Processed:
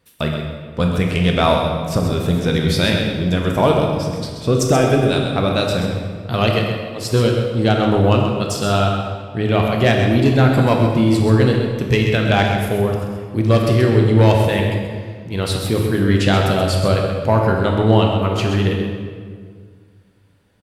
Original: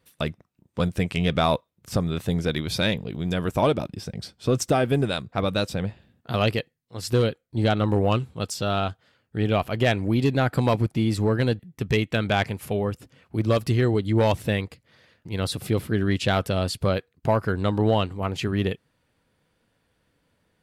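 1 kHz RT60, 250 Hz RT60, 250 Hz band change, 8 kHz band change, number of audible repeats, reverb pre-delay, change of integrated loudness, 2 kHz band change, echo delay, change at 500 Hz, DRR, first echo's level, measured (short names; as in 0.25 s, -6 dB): 1.7 s, 2.3 s, +8.0 dB, +7.0 dB, 1, 17 ms, +7.5 dB, +7.0 dB, 0.13 s, +7.5 dB, 0.0 dB, -8.0 dB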